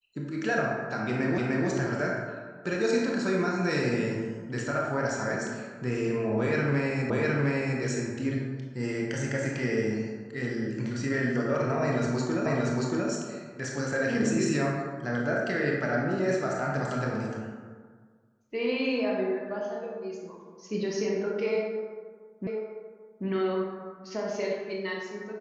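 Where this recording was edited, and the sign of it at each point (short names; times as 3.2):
1.38 repeat of the last 0.3 s
7.1 repeat of the last 0.71 s
12.46 repeat of the last 0.63 s
22.47 repeat of the last 0.79 s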